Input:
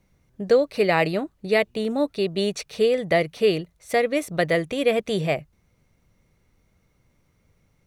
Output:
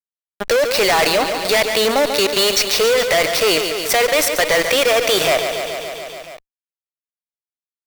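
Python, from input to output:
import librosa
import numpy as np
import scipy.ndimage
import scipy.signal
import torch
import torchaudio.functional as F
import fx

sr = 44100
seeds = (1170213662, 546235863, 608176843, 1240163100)

p1 = scipy.signal.sosfilt(scipy.signal.butter(2, 730.0, 'highpass', fs=sr, output='sos'), x)
p2 = fx.rider(p1, sr, range_db=10, speed_s=2.0)
p3 = p1 + (p2 * 10.0 ** (1.5 / 20.0))
p4 = fx.peak_eq(p3, sr, hz=5200.0, db=9.5, octaves=0.26)
p5 = np.repeat(scipy.signal.resample_poly(p4, 1, 2), 2)[:len(p4)]
p6 = fx.fuzz(p5, sr, gain_db=31.0, gate_db=-33.0)
p7 = fx.echo_feedback(p6, sr, ms=142, feedback_pct=59, wet_db=-12.5)
y = fx.env_flatten(p7, sr, amount_pct=50)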